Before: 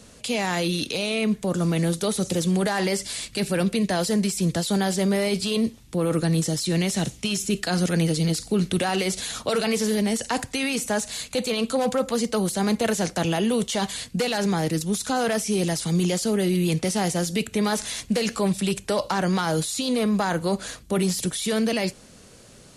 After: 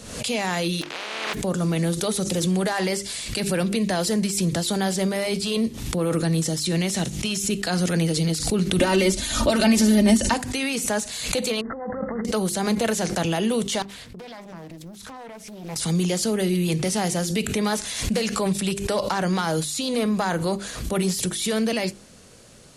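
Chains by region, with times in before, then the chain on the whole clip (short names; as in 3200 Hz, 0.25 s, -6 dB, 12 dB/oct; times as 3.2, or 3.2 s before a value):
0.81–1.33 spectral contrast lowered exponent 0.15 + BPF 330–2900 Hz
8.79–10.34 low shelf 310 Hz +12 dB + comb 3.3 ms, depth 79%
11.61–12.25 CVSD 32 kbps + negative-ratio compressor -28 dBFS, ratio -0.5 + brick-wall FIR low-pass 2100 Hz
13.82–15.76 bell 7800 Hz -10 dB 2 oct + compressor 16:1, threshold -35 dBFS + Doppler distortion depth 0.88 ms
whole clip: notches 50/100/150/200/250/300/350/400 Hz; backwards sustainer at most 62 dB/s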